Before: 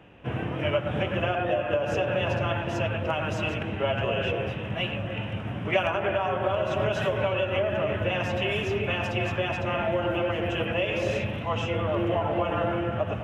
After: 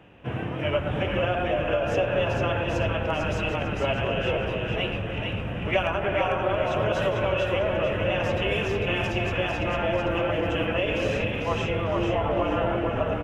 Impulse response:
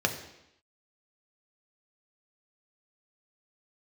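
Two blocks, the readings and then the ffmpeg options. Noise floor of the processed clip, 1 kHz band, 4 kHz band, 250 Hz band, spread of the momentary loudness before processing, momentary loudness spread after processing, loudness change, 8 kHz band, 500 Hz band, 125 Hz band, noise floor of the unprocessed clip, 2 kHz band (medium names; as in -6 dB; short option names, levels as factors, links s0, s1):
-31 dBFS, +1.0 dB, +1.5 dB, +1.5 dB, 4 LU, 3 LU, +1.5 dB, no reading, +1.5 dB, +1.0 dB, -34 dBFS, +1.5 dB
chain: -filter_complex "[0:a]asplit=5[s0][s1][s2][s3][s4];[s1]adelay=448,afreqshift=-44,volume=0.631[s5];[s2]adelay=896,afreqshift=-88,volume=0.214[s6];[s3]adelay=1344,afreqshift=-132,volume=0.0733[s7];[s4]adelay=1792,afreqshift=-176,volume=0.0248[s8];[s0][s5][s6][s7][s8]amix=inputs=5:normalize=0"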